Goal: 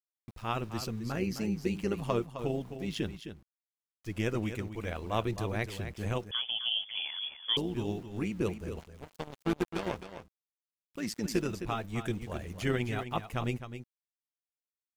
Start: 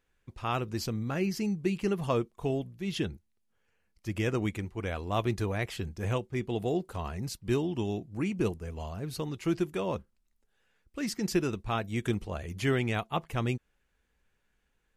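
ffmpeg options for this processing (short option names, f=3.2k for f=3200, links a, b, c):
-filter_complex "[0:a]asplit=3[a][b][c];[a]afade=t=out:st=8.79:d=0.02[d];[b]aeval=exprs='0.133*(cos(1*acos(clip(val(0)/0.133,-1,1)))-cos(1*PI/2))+0.0106*(cos(5*acos(clip(val(0)/0.133,-1,1)))-cos(5*PI/2))+0.0299*(cos(7*acos(clip(val(0)/0.133,-1,1)))-cos(7*PI/2))':c=same,afade=t=in:st=8.79:d=0.02,afade=t=out:st=9.96:d=0.02[e];[c]afade=t=in:st=9.96:d=0.02[f];[d][e][f]amix=inputs=3:normalize=0,tremolo=f=110:d=0.621,aeval=exprs='val(0)*gte(abs(val(0)),0.00266)':c=same,asplit=2[g][h];[h]aecho=0:1:261:0.316[i];[g][i]amix=inputs=2:normalize=0,asettb=1/sr,asplit=3[j][k][l];[j]atrim=end=6.314[m];[k]atrim=start=6.31:end=7.57,asetpts=PTS-STARTPTS,afade=t=in:d=0.004:c=qsin,afade=t=out:st=1.256:d=0.004:c=qsin,lowpass=f=3k:t=q:w=0.5098,lowpass=f=3k:t=q:w=0.6013,lowpass=f=3k:t=q:w=0.9,lowpass=f=3k:t=q:w=2.563,afreqshift=-3500[n];[l]atrim=start=7.566[o];[m][n]acrossfade=d=0.004:c1=hsin:c2=qsin[p];[p][o]acrossfade=d=0.004:c1=qsin:c2=hsin"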